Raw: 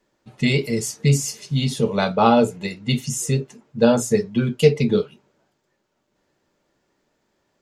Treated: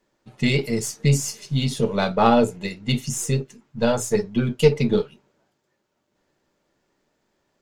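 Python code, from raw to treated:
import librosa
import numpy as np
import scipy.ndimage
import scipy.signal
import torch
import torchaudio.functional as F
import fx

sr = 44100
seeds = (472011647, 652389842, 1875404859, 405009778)

y = np.where(x < 0.0, 10.0 ** (-3.0 / 20.0) * x, x)
y = fx.peak_eq(y, sr, hz=fx.line((3.41, 1000.0), (4.14, 170.0)), db=-10.5, octaves=0.88, at=(3.41, 4.14), fade=0.02)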